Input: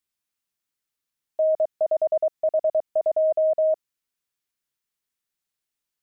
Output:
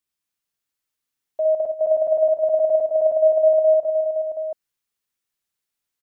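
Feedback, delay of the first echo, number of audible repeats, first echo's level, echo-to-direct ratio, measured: no regular repeats, 62 ms, 6, -4.5 dB, 0.0 dB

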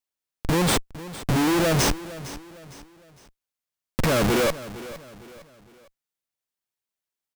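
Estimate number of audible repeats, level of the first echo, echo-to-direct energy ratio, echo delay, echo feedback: 3, -16.0 dB, -15.5 dB, 458 ms, 39%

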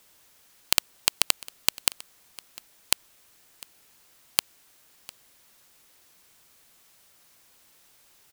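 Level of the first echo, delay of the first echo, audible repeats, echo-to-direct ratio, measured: -21.0 dB, 702 ms, 1, -21.0 dB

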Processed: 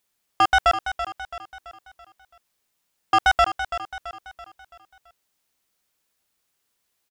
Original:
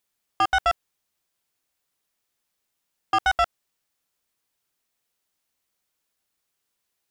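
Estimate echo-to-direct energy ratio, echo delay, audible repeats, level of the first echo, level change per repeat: -9.5 dB, 333 ms, 4, -10.5 dB, -6.5 dB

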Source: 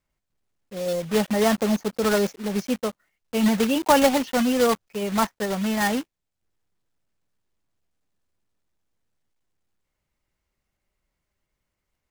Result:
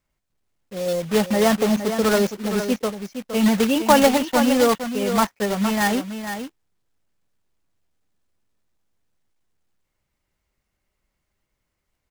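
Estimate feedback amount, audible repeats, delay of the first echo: no regular repeats, 1, 464 ms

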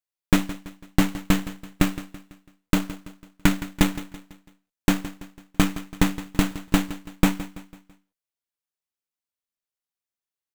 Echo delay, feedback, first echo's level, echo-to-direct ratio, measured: 166 ms, 45%, -15.0 dB, -14.0 dB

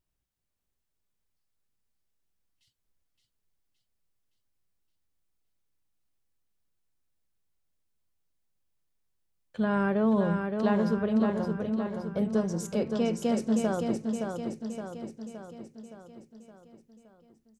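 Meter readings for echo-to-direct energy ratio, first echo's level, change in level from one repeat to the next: -3.5 dB, -5.0 dB, -5.0 dB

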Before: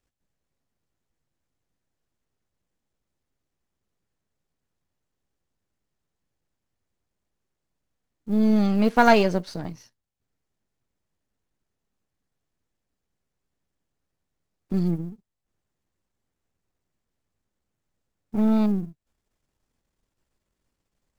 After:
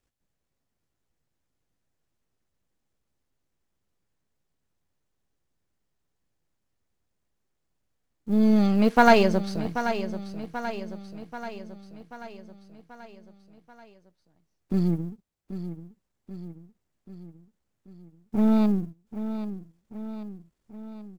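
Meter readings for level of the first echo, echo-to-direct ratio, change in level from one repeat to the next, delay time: -11.0 dB, -9.5 dB, -5.0 dB, 785 ms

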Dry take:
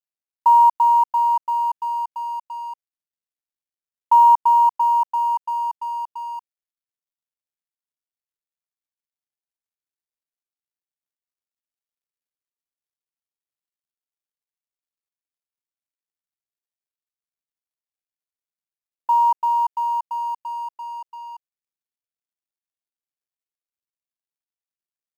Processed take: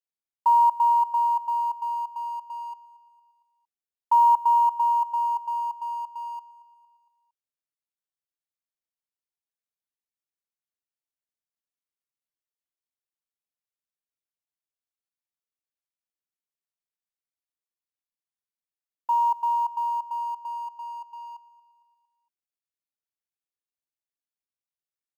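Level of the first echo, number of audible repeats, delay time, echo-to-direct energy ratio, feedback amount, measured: -19.5 dB, 3, 229 ms, -18.0 dB, 52%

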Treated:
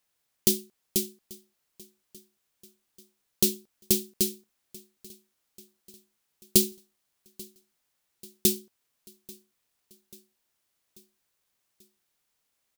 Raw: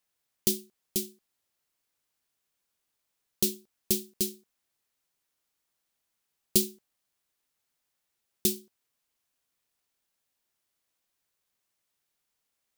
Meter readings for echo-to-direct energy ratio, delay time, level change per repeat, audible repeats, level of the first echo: -21.5 dB, 838 ms, -4.5 dB, 3, -23.0 dB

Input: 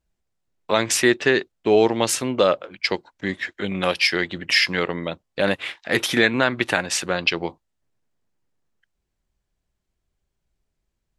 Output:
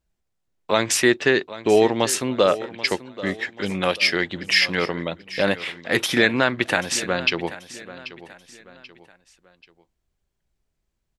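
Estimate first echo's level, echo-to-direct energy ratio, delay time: -16.0 dB, -15.5 dB, 785 ms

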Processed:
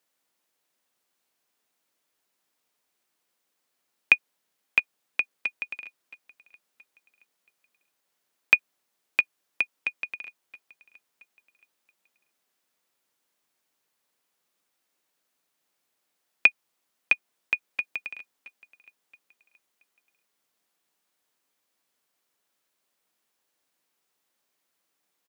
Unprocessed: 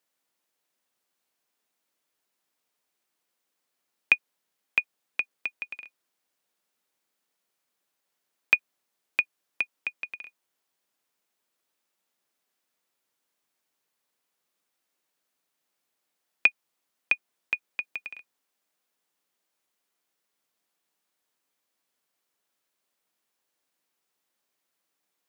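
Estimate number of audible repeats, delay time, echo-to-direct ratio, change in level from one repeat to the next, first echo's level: 2, 674 ms, -21.0 dB, -8.0 dB, -21.5 dB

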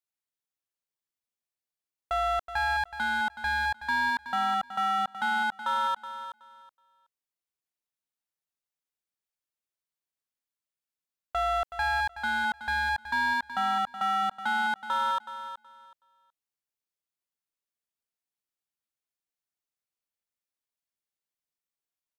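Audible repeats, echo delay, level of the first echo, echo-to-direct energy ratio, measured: 2, 373 ms, -11.5 dB, -11.5 dB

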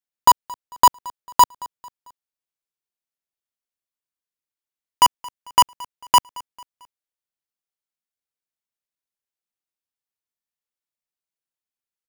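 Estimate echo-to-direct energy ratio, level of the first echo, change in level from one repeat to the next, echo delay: -21.0 dB, -22.0 dB, -7.0 dB, 223 ms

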